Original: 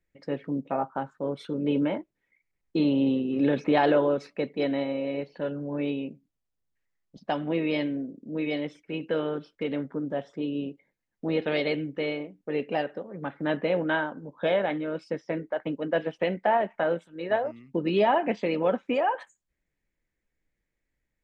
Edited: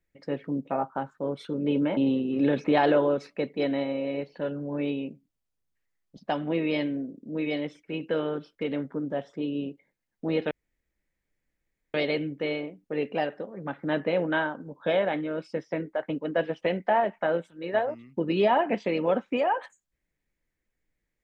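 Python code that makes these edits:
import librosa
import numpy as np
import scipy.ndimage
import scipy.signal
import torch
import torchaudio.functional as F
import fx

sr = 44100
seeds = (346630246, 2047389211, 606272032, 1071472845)

y = fx.edit(x, sr, fx.cut(start_s=1.97, length_s=1.0),
    fx.insert_room_tone(at_s=11.51, length_s=1.43), tone=tone)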